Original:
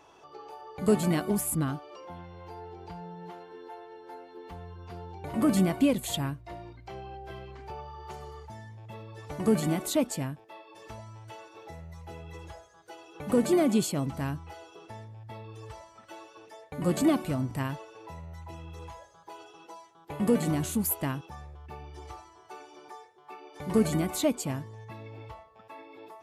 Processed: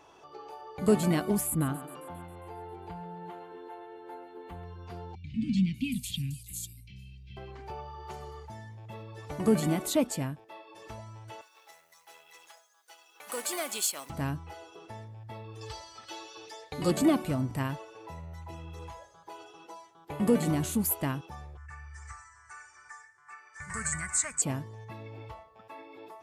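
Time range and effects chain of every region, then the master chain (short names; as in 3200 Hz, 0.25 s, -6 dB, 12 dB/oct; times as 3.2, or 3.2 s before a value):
1.47–4.64 bell 5400 Hz -14.5 dB 0.5 oct + thinning echo 0.135 s, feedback 63%, high-pass 180 Hz, level -13 dB
5.15–7.37 Chebyshev band-stop 240–2400 Hz, order 4 + bands offset in time lows, highs 0.5 s, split 5000 Hz
11.41–14.1 G.711 law mismatch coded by A + HPF 940 Hz + high shelf 4400 Hz +9.5 dB
15.61–16.91 bell 4500 Hz +14.5 dB 1.1 oct + comb 2.4 ms, depth 40% + mismatched tape noise reduction encoder only
21.57–24.42 EQ curve 110 Hz 0 dB, 290 Hz -29 dB, 760 Hz -16 dB, 1200 Hz +2 dB, 1800 Hz +12 dB, 3300 Hz -19 dB, 5400 Hz 0 dB, 8200 Hz +14 dB, 13000 Hz -30 dB + feedback echo 0.384 s, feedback 34%, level -23 dB
whole clip: dry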